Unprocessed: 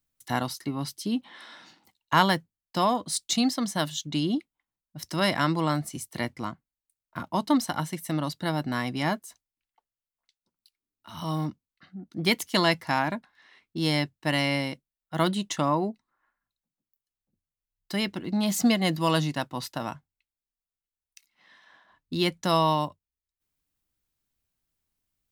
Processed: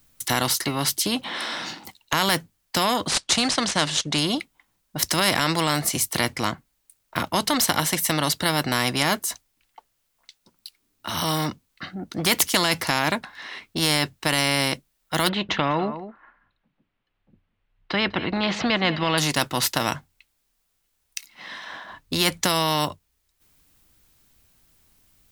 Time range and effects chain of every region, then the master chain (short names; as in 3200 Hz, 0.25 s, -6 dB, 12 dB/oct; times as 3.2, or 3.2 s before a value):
3.08–4.18 median filter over 5 samples + Chebyshev low-pass 9300 Hz, order 4
15.29–19.18 LPF 3000 Hz 24 dB/oct + echo 0.198 s -22.5 dB
whole clip: maximiser +15 dB; spectral compressor 2:1; gain -1 dB